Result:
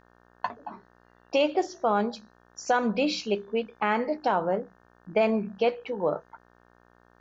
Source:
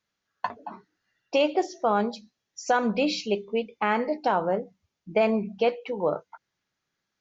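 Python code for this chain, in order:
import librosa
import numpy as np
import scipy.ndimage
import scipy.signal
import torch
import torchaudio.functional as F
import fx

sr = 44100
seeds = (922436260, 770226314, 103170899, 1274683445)

y = fx.dmg_buzz(x, sr, base_hz=60.0, harmonics=30, level_db=-59.0, tilt_db=-1, odd_only=False)
y = F.gain(torch.from_numpy(y), -1.0).numpy()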